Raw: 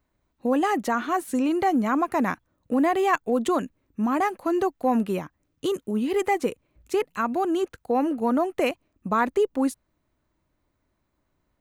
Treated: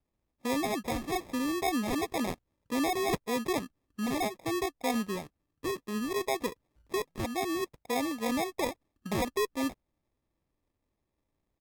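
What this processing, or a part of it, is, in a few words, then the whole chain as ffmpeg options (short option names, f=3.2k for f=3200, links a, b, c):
crushed at another speed: -af "asetrate=55125,aresample=44100,acrusher=samples=24:mix=1:aa=0.000001,asetrate=35280,aresample=44100,volume=-8dB"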